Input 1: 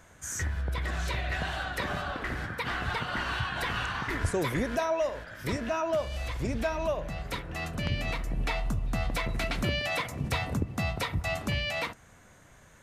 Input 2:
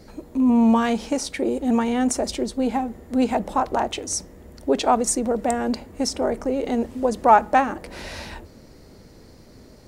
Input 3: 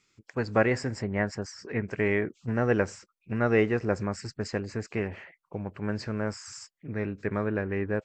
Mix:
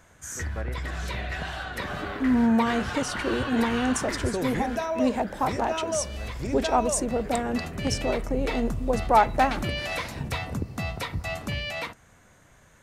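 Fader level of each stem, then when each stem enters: -0.5 dB, -4.5 dB, -14.5 dB; 0.00 s, 1.85 s, 0.00 s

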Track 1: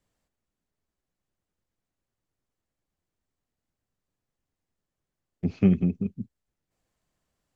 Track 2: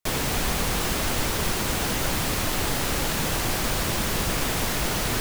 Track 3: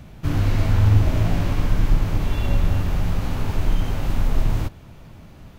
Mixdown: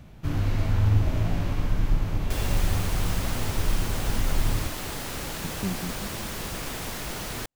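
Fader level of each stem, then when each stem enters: -11.0 dB, -8.0 dB, -5.5 dB; 0.00 s, 2.25 s, 0.00 s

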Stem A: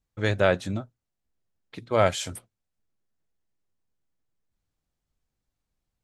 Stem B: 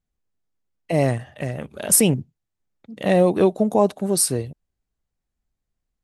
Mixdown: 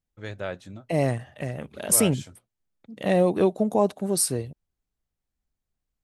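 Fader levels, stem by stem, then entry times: -11.5 dB, -4.0 dB; 0.00 s, 0.00 s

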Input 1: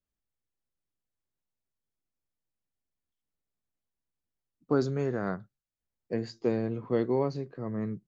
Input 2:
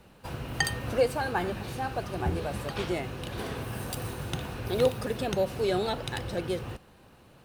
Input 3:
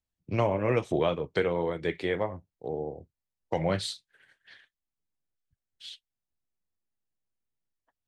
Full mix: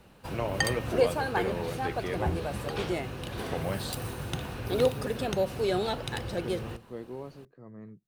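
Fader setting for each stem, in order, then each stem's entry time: -13.0 dB, -0.5 dB, -6.0 dB; 0.00 s, 0.00 s, 0.00 s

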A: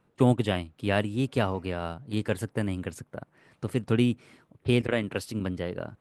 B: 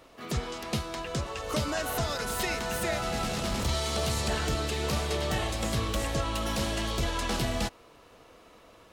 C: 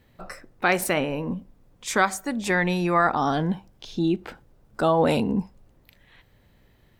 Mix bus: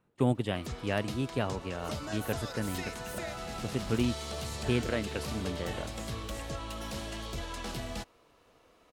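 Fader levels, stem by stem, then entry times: -5.5 dB, -8.5 dB, mute; 0.00 s, 0.35 s, mute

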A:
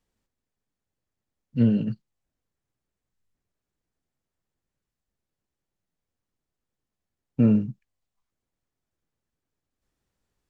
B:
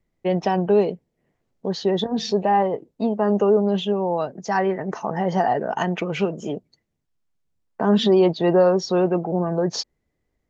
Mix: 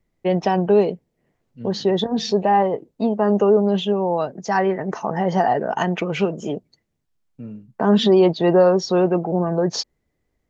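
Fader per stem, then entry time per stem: -16.5 dB, +2.0 dB; 0.00 s, 0.00 s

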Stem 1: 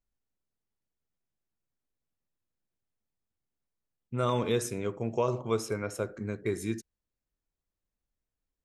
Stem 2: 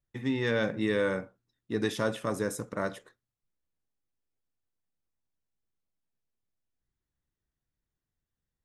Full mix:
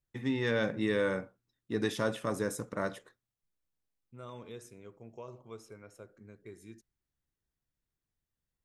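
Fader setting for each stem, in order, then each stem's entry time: -18.0 dB, -2.0 dB; 0.00 s, 0.00 s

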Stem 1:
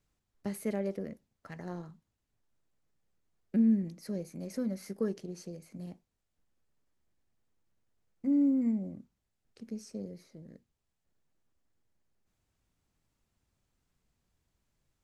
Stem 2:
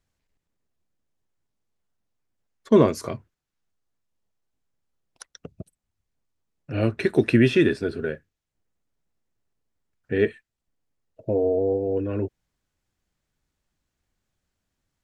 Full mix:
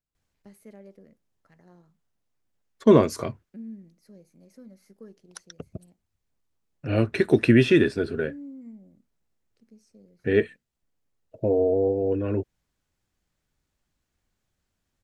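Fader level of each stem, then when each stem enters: -14.0 dB, +0.5 dB; 0.00 s, 0.15 s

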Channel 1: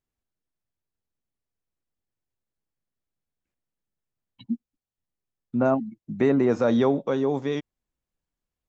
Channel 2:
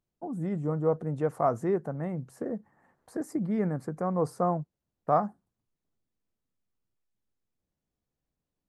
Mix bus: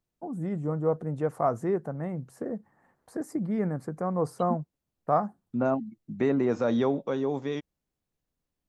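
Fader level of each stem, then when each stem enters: -4.5 dB, 0.0 dB; 0.00 s, 0.00 s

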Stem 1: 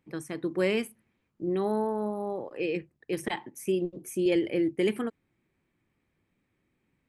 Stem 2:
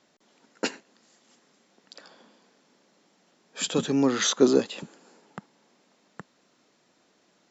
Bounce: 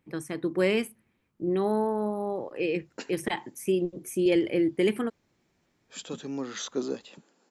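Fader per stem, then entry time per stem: +2.0 dB, -11.5 dB; 0.00 s, 2.35 s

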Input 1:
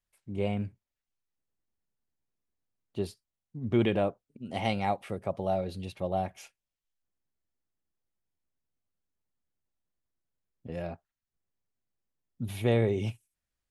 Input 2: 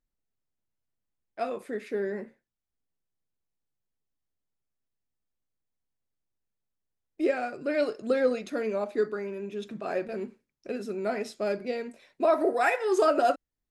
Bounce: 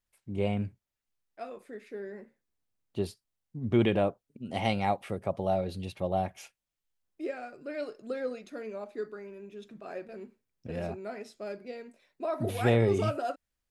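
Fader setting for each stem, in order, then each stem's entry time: +1.0 dB, -9.5 dB; 0.00 s, 0.00 s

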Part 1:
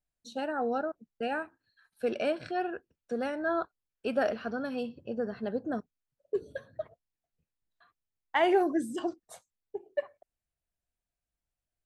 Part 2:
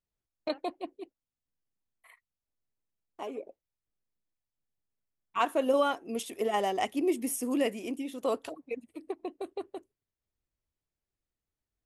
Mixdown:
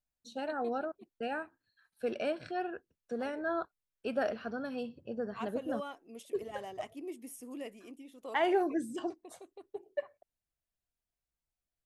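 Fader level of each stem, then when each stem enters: -4.0 dB, -14.5 dB; 0.00 s, 0.00 s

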